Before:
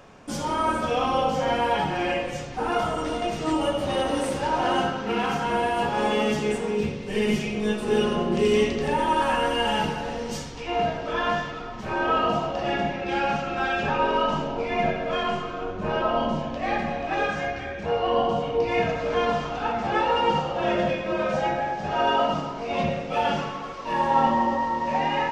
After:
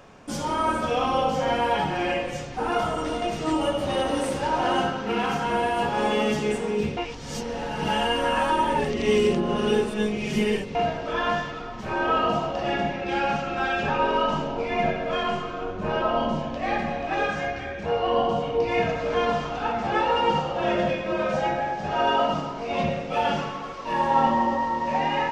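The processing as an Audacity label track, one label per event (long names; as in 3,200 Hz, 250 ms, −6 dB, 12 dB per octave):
6.970000	10.750000	reverse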